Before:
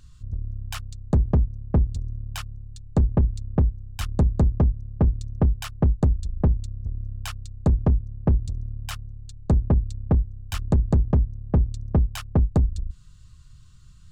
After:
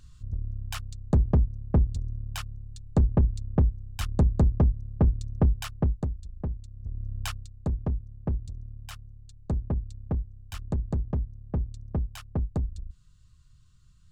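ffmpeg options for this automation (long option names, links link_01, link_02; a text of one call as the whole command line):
ffmpeg -i in.wav -af "volume=10.5dB,afade=type=out:start_time=5.64:duration=0.47:silence=0.316228,afade=type=in:start_time=6.71:duration=0.54:silence=0.237137,afade=type=out:start_time=7.25:duration=0.26:silence=0.334965" out.wav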